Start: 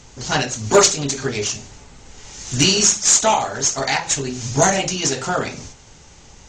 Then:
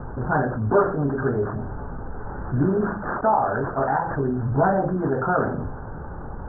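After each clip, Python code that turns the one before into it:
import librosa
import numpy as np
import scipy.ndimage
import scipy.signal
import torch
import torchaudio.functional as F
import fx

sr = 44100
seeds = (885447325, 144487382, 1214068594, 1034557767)

y = scipy.signal.sosfilt(scipy.signal.butter(16, 1600.0, 'lowpass', fs=sr, output='sos'), x)
y = fx.env_flatten(y, sr, amount_pct=50)
y = y * 10.0 ** (-6.0 / 20.0)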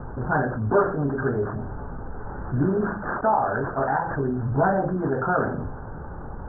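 y = fx.dynamic_eq(x, sr, hz=1600.0, q=5.0, threshold_db=-41.0, ratio=4.0, max_db=3)
y = y * 10.0 ** (-1.5 / 20.0)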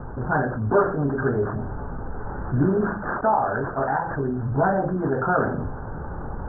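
y = fx.rider(x, sr, range_db=5, speed_s=2.0)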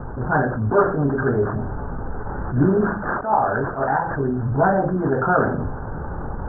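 y = fx.attack_slew(x, sr, db_per_s=140.0)
y = y * 10.0 ** (3.5 / 20.0)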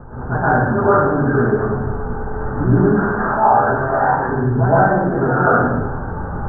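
y = fx.rev_plate(x, sr, seeds[0], rt60_s=1.0, hf_ratio=0.85, predelay_ms=100, drr_db=-10.0)
y = y * 10.0 ** (-5.5 / 20.0)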